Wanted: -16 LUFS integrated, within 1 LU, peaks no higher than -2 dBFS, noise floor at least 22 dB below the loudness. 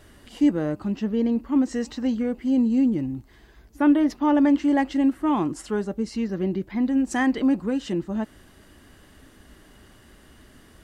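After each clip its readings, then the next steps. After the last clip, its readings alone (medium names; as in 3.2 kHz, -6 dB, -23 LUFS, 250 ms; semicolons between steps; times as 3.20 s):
loudness -23.5 LUFS; peak level -10.0 dBFS; loudness target -16.0 LUFS
-> trim +7.5 dB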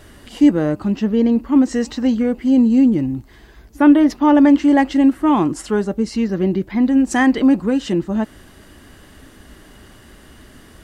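loudness -16.0 LUFS; peak level -2.5 dBFS; noise floor -45 dBFS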